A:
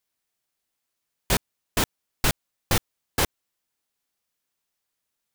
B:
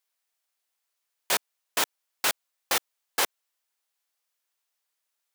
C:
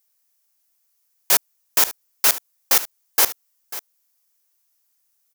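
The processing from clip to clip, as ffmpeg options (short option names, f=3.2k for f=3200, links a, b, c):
-af "highpass=570"
-filter_complex "[0:a]asplit=2[a][b];[b]acrusher=bits=2:mix=0:aa=0.5,volume=-11.5dB[c];[a][c]amix=inputs=2:normalize=0,aexciter=amount=1.6:drive=8.6:freq=5k,aecho=1:1:543:0.168,volume=2dB"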